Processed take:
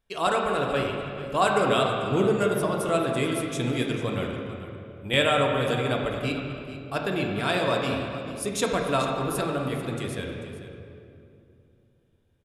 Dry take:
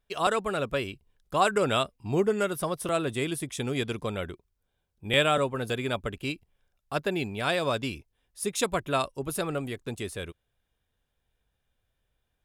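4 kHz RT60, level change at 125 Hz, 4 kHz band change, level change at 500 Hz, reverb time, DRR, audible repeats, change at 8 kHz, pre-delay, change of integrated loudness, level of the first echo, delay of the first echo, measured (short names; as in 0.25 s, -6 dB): 1.7 s, +4.5 dB, +2.0 dB, +3.5 dB, 2.6 s, 0.0 dB, 1, +0.5 dB, 3 ms, +3.0 dB, -14.0 dB, 0.441 s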